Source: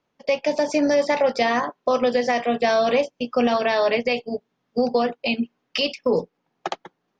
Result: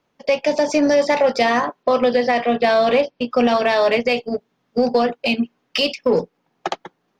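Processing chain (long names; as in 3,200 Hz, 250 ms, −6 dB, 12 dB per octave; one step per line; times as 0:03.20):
0:01.83–0:03.31: Butterworth low-pass 5,100 Hz 48 dB per octave
in parallel at −8 dB: soft clipping −26.5 dBFS, distortion −6 dB
on the sum: level +2.5 dB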